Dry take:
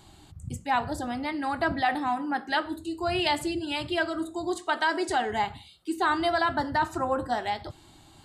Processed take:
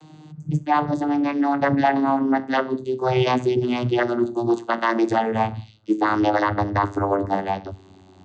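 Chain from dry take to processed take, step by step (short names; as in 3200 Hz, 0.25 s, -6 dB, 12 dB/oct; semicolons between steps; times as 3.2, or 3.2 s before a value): vocoder on a gliding note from D#3, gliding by -9 st; gain +8 dB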